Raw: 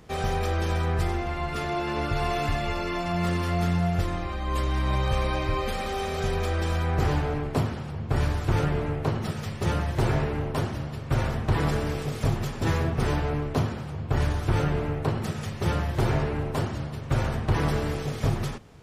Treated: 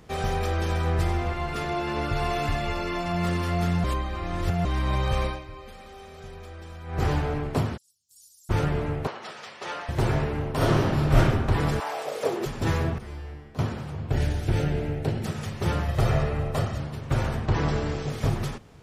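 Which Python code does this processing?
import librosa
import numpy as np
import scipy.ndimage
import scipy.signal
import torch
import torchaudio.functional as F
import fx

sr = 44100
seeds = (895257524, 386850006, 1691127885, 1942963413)

y = fx.echo_throw(x, sr, start_s=0.46, length_s=0.48, ms=390, feedback_pct=40, wet_db=-9.0)
y = fx.cheby2_highpass(y, sr, hz=2100.0, order=4, stop_db=60, at=(7.76, 8.49), fade=0.02)
y = fx.bandpass_edges(y, sr, low_hz=650.0, high_hz=5900.0, at=(9.07, 9.89))
y = fx.reverb_throw(y, sr, start_s=10.56, length_s=0.61, rt60_s=1.3, drr_db=-9.0)
y = fx.highpass_res(y, sr, hz=fx.line((11.79, 930.0), (12.45, 350.0)), q=3.8, at=(11.79, 12.45), fade=0.02)
y = fx.comb_fb(y, sr, f0_hz=71.0, decay_s=1.1, harmonics='odd', damping=0.0, mix_pct=90, at=(12.98, 13.59))
y = fx.peak_eq(y, sr, hz=1100.0, db=-14.0, octaves=0.54, at=(14.11, 15.26))
y = fx.comb(y, sr, ms=1.6, depth=0.49, at=(15.88, 16.8))
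y = fx.cheby1_lowpass(y, sr, hz=7600.0, order=5, at=(17.46, 18.1))
y = fx.edit(y, sr, fx.reverse_span(start_s=3.84, length_s=0.81),
    fx.fade_down_up(start_s=5.25, length_s=1.78, db=-15.0, fade_s=0.23, curve='qua'), tone=tone)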